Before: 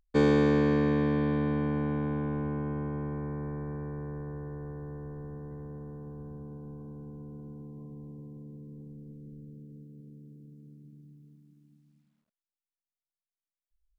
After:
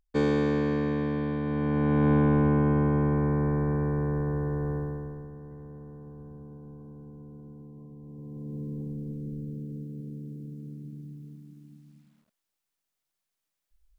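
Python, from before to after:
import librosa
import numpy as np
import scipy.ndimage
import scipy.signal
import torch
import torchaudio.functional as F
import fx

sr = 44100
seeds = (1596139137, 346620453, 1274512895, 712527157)

y = fx.gain(x, sr, db=fx.line((1.42, -2.0), (2.11, 10.0), (4.76, 10.0), (5.32, -2.0), (8.0, -2.0), (8.6, 10.5)))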